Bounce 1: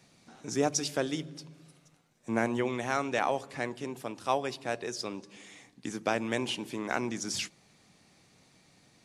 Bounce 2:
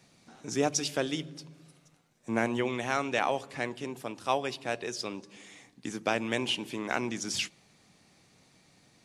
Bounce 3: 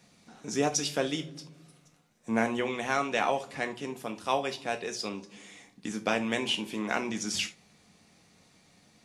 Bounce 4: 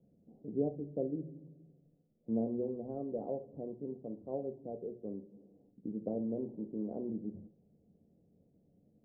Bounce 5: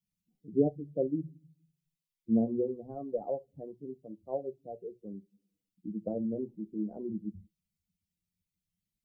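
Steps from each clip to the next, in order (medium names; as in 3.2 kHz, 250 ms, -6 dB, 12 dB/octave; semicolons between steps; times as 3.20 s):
dynamic bell 2.9 kHz, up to +5 dB, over -51 dBFS, Q 1.8
gated-style reverb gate 100 ms falling, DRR 6 dB
steep low-pass 560 Hz 36 dB/octave; trim -4 dB
expander on every frequency bin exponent 2; trim +9 dB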